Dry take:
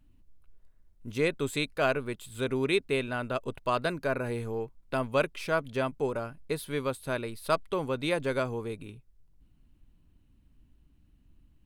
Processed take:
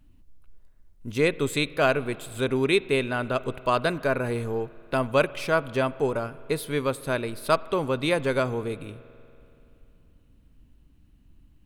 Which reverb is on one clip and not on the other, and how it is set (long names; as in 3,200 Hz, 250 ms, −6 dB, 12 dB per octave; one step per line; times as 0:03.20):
spring reverb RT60 2.9 s, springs 47 ms, chirp 45 ms, DRR 18 dB
level +5 dB